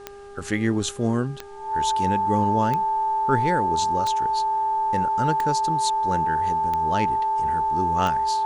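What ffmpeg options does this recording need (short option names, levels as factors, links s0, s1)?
-af "adeclick=t=4,bandreject=f=402.6:t=h:w=4,bandreject=f=805.2:t=h:w=4,bandreject=f=1207.8:t=h:w=4,bandreject=f=1610.4:t=h:w=4,bandreject=f=880:w=30,agate=range=0.0891:threshold=0.0562"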